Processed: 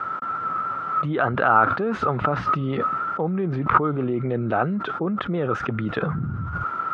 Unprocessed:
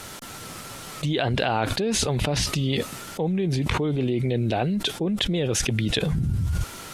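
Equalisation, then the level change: high-pass 120 Hz 12 dB/octave; resonant low-pass 1.3 kHz, resonance Q 13; 0.0 dB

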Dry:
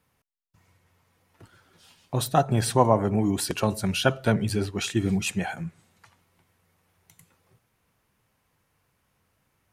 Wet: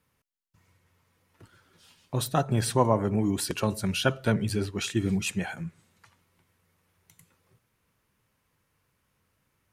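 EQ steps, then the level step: peaking EQ 740 Hz -5.5 dB 0.4 oct; -2.0 dB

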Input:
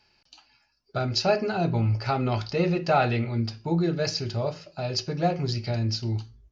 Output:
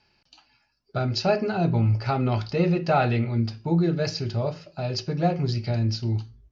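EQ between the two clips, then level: distance through air 60 m; peaking EQ 160 Hz +3.5 dB 1.9 oct; 0.0 dB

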